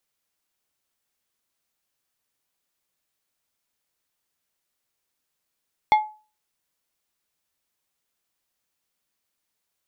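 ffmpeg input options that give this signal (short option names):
-f lavfi -i "aevalsrc='0.316*pow(10,-3*t/0.35)*sin(2*PI*855*t)+0.112*pow(10,-3*t/0.184)*sin(2*PI*2137.5*t)+0.0398*pow(10,-3*t/0.133)*sin(2*PI*3420*t)+0.0141*pow(10,-3*t/0.113)*sin(2*PI*4275*t)+0.00501*pow(10,-3*t/0.094)*sin(2*PI*5557.5*t)':d=0.89:s=44100"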